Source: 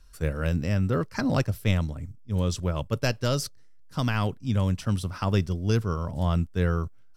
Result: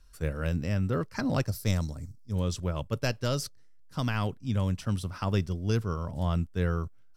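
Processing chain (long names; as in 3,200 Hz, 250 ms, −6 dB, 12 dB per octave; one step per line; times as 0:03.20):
0:01.47–0:02.33: high shelf with overshoot 3,800 Hz +7 dB, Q 3
level −3.5 dB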